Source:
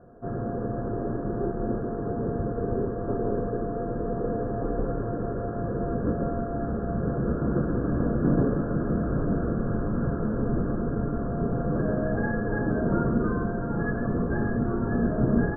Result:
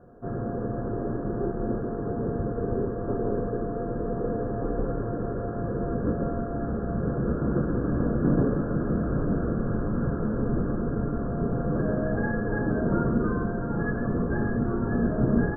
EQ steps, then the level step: notch 670 Hz, Q 21; 0.0 dB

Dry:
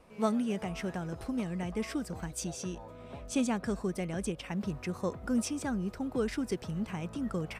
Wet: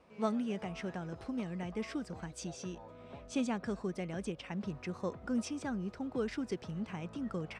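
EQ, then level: HPF 89 Hz 6 dB/oct; LPF 5900 Hz 12 dB/oct; -3.5 dB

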